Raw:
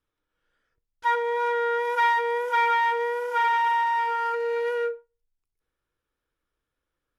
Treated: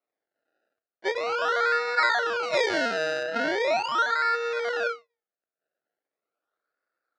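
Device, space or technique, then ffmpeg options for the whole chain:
circuit-bent sampling toy: -filter_complex "[0:a]acrusher=samples=27:mix=1:aa=0.000001:lfo=1:lforange=27:lforate=0.4,highpass=490,equalizer=f=660:t=q:w=4:g=5,equalizer=f=960:t=q:w=4:g=-10,equalizer=f=1400:t=q:w=4:g=10,equalizer=f=3200:t=q:w=4:g=-6,lowpass=f=4600:w=0.5412,lowpass=f=4600:w=1.3066,asettb=1/sr,asplit=3[s0][s1][s2];[s0]atrim=end=2.434[s3];[s1]atrim=start=2.43:end=3.23,asetpts=PTS-STARTPTS,afade=t=in:d=0.004:c=qsin,afade=t=out:st=0.796:d=0.004:c=qsin,highshelf=f=4400:g=10[s4];[s2]atrim=start=3.226[s5];[s3][s4]acrossfade=d=0.004:c1=hsin:c2=qsin[s6];[s6][s5]acrossfade=d=0.004:c1=qsin:c2=hsin"

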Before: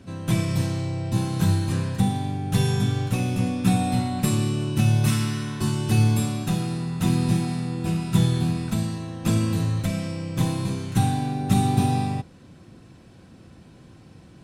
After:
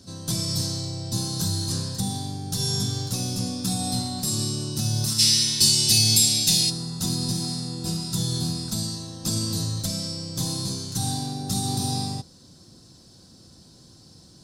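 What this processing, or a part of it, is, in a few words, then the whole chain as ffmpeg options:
over-bright horn tweeter: -filter_complex "[0:a]highshelf=f=3400:t=q:w=3:g=12,alimiter=limit=0.299:level=0:latency=1:release=130,asplit=3[s0][s1][s2];[s0]afade=t=out:st=5.18:d=0.02[s3];[s1]highshelf=f=1700:t=q:w=3:g=9.5,afade=t=in:st=5.18:d=0.02,afade=t=out:st=6.69:d=0.02[s4];[s2]afade=t=in:st=6.69:d=0.02[s5];[s3][s4][s5]amix=inputs=3:normalize=0,volume=0.596"

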